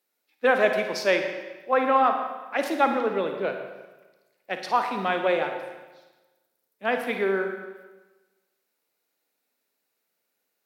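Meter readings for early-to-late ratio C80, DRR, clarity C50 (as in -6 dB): 7.5 dB, 5.0 dB, 5.5 dB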